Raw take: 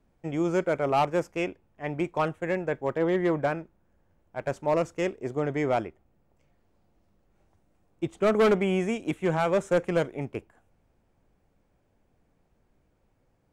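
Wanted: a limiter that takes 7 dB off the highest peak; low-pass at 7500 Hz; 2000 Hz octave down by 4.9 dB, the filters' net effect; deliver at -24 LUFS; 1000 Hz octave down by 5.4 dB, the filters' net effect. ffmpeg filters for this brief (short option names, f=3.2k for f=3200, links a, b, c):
-af "lowpass=7.5k,equalizer=f=1k:t=o:g=-7,equalizer=f=2k:t=o:g=-4,volume=9.5dB,alimiter=limit=-14dB:level=0:latency=1"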